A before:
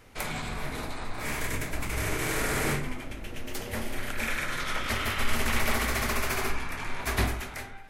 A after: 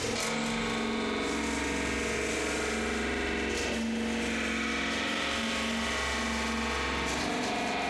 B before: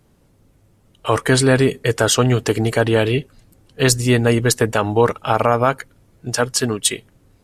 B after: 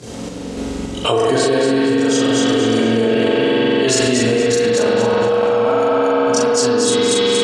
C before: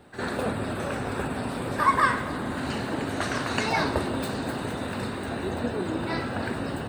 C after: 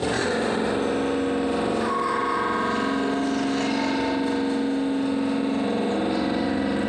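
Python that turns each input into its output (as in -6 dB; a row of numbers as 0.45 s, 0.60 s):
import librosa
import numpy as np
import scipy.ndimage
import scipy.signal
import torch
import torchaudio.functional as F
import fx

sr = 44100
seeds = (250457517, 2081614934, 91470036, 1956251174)

p1 = fx.rider(x, sr, range_db=10, speed_s=2.0)
p2 = scipy.signal.sosfilt(scipy.signal.butter(2, 170.0, 'highpass', fs=sr, output='sos'), p1)
p3 = fx.peak_eq(p2, sr, hz=1500.0, db=-9.0, octaves=2.7)
p4 = fx.hum_notches(p3, sr, base_hz=50, count=5)
p5 = fx.chorus_voices(p4, sr, voices=6, hz=0.56, base_ms=25, depth_ms=2.4, mix_pct=70)
p6 = scipy.signal.sosfilt(scipy.signal.butter(4, 7300.0, 'lowpass', fs=sr, output='sos'), p5)
p7 = fx.high_shelf(p6, sr, hz=4800.0, db=8.0)
p8 = fx.doubler(p7, sr, ms=40.0, db=-4.5)
p9 = p8 + fx.echo_feedback(p8, sr, ms=235, feedback_pct=38, wet_db=-3.5, dry=0)
p10 = fx.rev_spring(p9, sr, rt60_s=3.4, pass_ms=(44,), chirp_ms=30, drr_db=-6.5)
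p11 = fx.tremolo_random(p10, sr, seeds[0], hz=3.5, depth_pct=55)
p12 = fx.env_flatten(p11, sr, amount_pct=100)
y = p12 * librosa.db_to_amplitude(-4.5)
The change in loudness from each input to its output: +0.5 LU, +2.0 LU, +4.0 LU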